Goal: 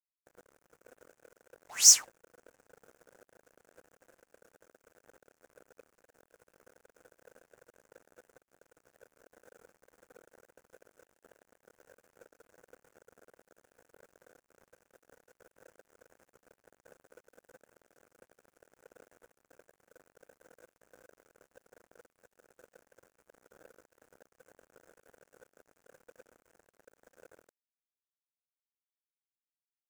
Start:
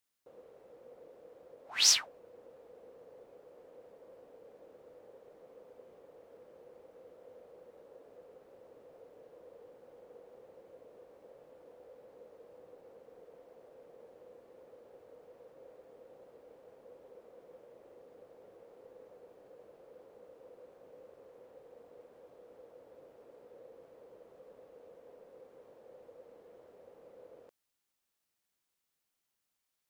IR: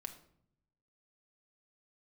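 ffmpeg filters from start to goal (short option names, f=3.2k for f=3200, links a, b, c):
-af "asoftclip=type=tanh:threshold=-21.5dB,highshelf=f=5.1k:t=q:w=3:g=10.5,acrusher=bits=7:mix=0:aa=0.5,volume=-1.5dB"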